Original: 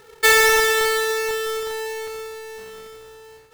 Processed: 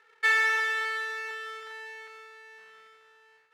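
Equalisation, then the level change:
resonant band-pass 1,800 Hz, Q 1.6
−6.0 dB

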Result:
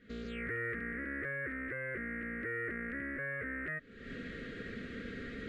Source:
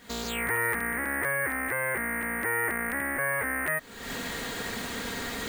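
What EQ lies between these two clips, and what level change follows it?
Butterworth band-reject 870 Hz, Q 0.82
low-pass filter 1,700 Hz 12 dB per octave
−5.0 dB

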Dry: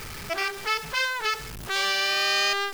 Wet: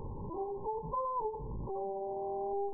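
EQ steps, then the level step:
Butterworth band-reject 680 Hz, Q 3.3
linear-phase brick-wall low-pass 1,100 Hz
0.0 dB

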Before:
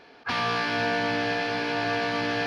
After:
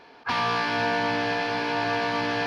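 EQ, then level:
parametric band 960 Hz +7.5 dB 0.32 octaves
0.0 dB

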